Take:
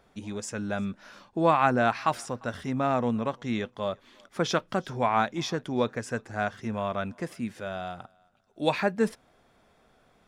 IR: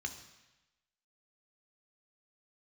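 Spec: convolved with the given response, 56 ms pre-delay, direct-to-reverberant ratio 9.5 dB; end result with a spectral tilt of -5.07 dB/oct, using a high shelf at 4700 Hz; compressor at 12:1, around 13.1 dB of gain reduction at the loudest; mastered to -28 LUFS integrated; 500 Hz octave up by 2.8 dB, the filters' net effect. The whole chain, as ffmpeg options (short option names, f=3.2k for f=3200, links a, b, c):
-filter_complex "[0:a]equalizer=f=500:t=o:g=3.5,highshelf=f=4.7k:g=-3.5,acompressor=threshold=-29dB:ratio=12,asplit=2[a][b];[1:a]atrim=start_sample=2205,adelay=56[c];[b][c]afir=irnorm=-1:irlink=0,volume=-9.5dB[d];[a][d]amix=inputs=2:normalize=0,volume=7.5dB"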